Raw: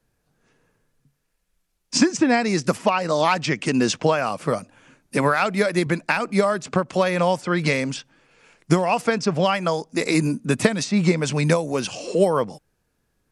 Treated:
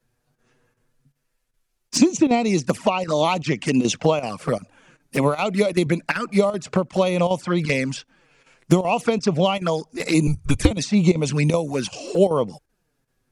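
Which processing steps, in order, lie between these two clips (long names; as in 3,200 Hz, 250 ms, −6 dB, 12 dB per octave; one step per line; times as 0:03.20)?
0:10.27–0:10.71: frequency shifter −140 Hz
square-wave tremolo 2.6 Hz, depth 65%, duty 90%
flanger swept by the level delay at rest 8.2 ms, full sweep at −17 dBFS
level +2.5 dB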